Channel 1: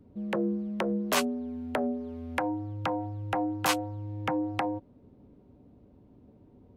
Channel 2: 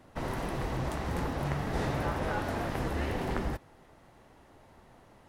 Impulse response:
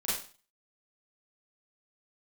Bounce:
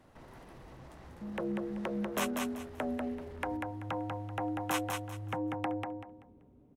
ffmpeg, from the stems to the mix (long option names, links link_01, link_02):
-filter_complex "[0:a]equalizer=frequency=4600:width_type=o:width=0.29:gain=-14.5,adelay=1050,volume=-6.5dB,asplit=2[link_01][link_02];[link_02]volume=-4dB[link_03];[1:a]acompressor=threshold=-38dB:ratio=6,alimiter=level_in=15.5dB:limit=-24dB:level=0:latency=1:release=77,volume=-15.5dB,volume=-4.5dB,asplit=2[link_04][link_05];[link_05]volume=-11dB[link_06];[link_03][link_06]amix=inputs=2:normalize=0,aecho=0:1:192|384|576|768:1|0.26|0.0676|0.0176[link_07];[link_01][link_04][link_07]amix=inputs=3:normalize=0"